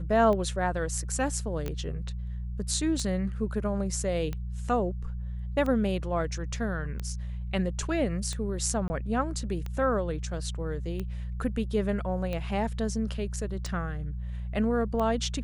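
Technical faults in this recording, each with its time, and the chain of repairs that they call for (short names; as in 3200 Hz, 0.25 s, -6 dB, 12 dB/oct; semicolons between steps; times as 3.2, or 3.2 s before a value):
hum 60 Hz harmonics 3 -34 dBFS
tick 45 rpm -21 dBFS
1.68 pop -20 dBFS
8.88–8.9 gap 20 ms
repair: de-click; de-hum 60 Hz, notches 3; interpolate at 8.88, 20 ms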